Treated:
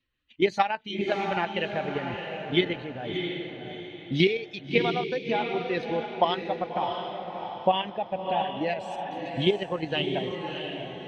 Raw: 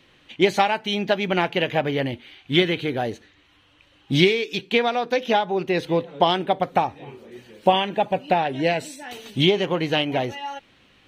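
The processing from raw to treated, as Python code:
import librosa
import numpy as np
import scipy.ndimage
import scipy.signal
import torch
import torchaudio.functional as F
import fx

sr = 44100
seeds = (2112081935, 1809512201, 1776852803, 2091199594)

y = fx.bin_expand(x, sr, power=1.5)
y = scipy.signal.sosfilt(scipy.signal.butter(2, 4500.0, 'lowpass', fs=sr, output='sos'), y)
y = fx.level_steps(y, sr, step_db=9)
y = fx.echo_diffused(y, sr, ms=657, feedback_pct=40, wet_db=-5.0)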